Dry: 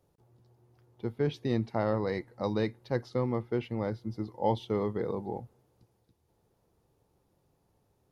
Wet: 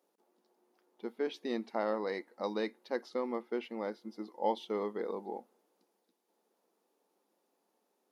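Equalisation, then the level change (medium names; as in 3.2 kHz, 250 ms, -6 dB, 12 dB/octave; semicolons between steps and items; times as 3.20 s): brick-wall FIR high-pass 190 Hz; bass shelf 270 Hz -8.5 dB; -1.5 dB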